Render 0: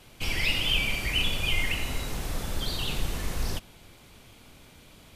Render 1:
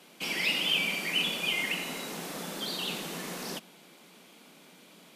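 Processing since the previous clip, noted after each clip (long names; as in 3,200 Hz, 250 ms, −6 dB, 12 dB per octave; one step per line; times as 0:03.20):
elliptic high-pass filter 170 Hz, stop band 40 dB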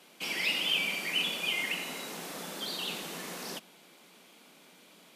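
low-shelf EQ 230 Hz −6.5 dB
level −1.5 dB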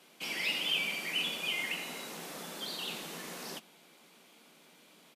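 double-tracking delay 13 ms −12 dB
level −3 dB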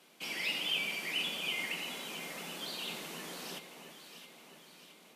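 delay that swaps between a low-pass and a high-pass 334 ms, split 1,200 Hz, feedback 74%, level −8 dB
level −2 dB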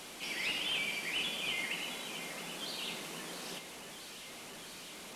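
linear delta modulator 64 kbit/s, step −42 dBFS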